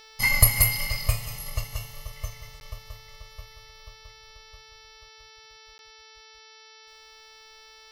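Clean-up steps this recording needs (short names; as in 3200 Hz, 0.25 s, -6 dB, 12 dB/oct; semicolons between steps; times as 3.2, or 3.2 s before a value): de-hum 440 Hz, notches 13; interpolate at 2.6/5.78, 11 ms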